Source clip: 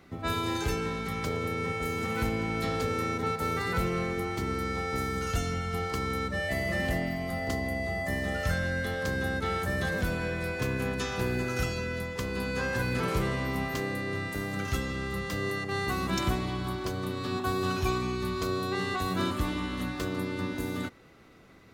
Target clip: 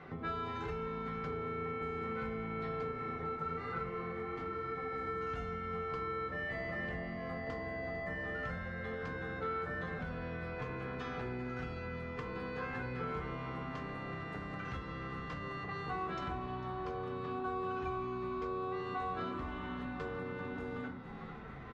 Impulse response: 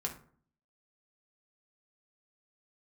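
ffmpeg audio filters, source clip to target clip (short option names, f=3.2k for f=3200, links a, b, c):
-filter_complex "[0:a]asettb=1/sr,asplit=3[a][b][c];[a]atrim=end=2.914[d];[b]atrim=start=2.91:end=5.07,asetpts=PTS-STARTPTS,afade=t=in:d=0.004:c=qsin,afade=t=out:st=2.156:d=0.004:c=qsin,flanger=delay=6.6:depth=7.9:regen=43:speed=1.1:shape=triangular[e];[c]atrim=start=5.066[f];[d][e]acrossfade=d=0.004:c1=hsin:c2=qsin[g];[g][f]acrossfade=d=0.004:c1=qsin:c2=hsin,asplit=6[h][i][j][k][l][m];[i]adelay=450,afreqshift=-80,volume=-16.5dB[n];[j]adelay=900,afreqshift=-160,volume=-22dB[o];[k]adelay=1350,afreqshift=-240,volume=-27.5dB[p];[l]adelay=1800,afreqshift=-320,volume=-33dB[q];[m]adelay=2250,afreqshift=-400,volume=-38.6dB[r];[h][n][o][p][q][r]amix=inputs=6:normalize=0[s];[1:a]atrim=start_sample=2205[t];[s][t]afir=irnorm=-1:irlink=0,acompressor=threshold=-45dB:ratio=3,lowpass=1.9k,lowshelf=f=460:g=-9,volume=8.5dB"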